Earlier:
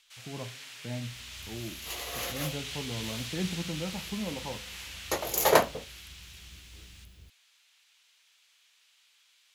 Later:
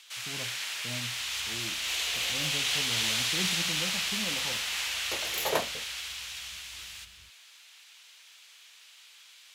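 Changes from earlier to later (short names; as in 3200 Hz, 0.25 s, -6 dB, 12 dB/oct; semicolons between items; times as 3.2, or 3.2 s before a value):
speech -4.0 dB; first sound +11.0 dB; second sound -8.0 dB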